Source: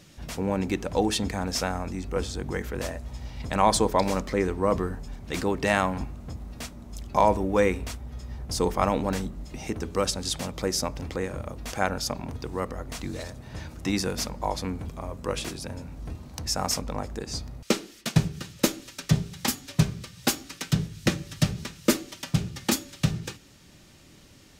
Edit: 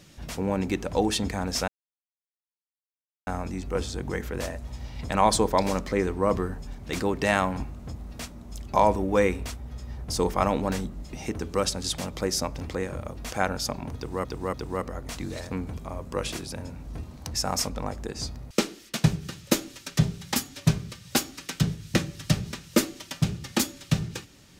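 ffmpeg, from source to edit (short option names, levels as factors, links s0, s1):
-filter_complex "[0:a]asplit=5[s0][s1][s2][s3][s4];[s0]atrim=end=1.68,asetpts=PTS-STARTPTS,afade=t=out:st=1.676:d=0.004:c=hsin,apad=pad_dur=1.59[s5];[s1]atrim=start=1.68:end=12.662,asetpts=PTS-STARTPTS,afade=t=in:d=0.004:c=hsin[s6];[s2]atrim=start=12.368:end=12.662[s7];[s3]atrim=start=12.368:end=13.342[s8];[s4]atrim=start=14.628[s9];[s5][s6]concat=n=2:v=0:a=1[s10];[s10][s7]acrossfade=d=0.004:c1=hsin:c2=hsin[s11];[s11][s8]acrossfade=d=0.004:c1=hsin:c2=hsin[s12];[s12][s9]acrossfade=d=0.004:c1=hsin:c2=hsin"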